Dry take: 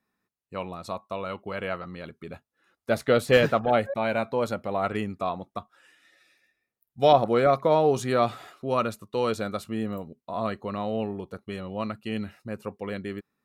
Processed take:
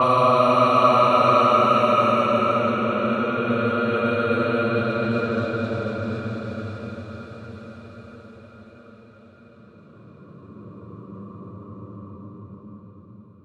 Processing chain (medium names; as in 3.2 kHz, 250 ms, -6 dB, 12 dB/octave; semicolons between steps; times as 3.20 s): Paulstretch 44×, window 0.10 s, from 8.77 s; level-controlled noise filter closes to 870 Hz, open at -20.5 dBFS; echo that smears into a reverb 642 ms, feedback 67%, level -14 dB; trim +5.5 dB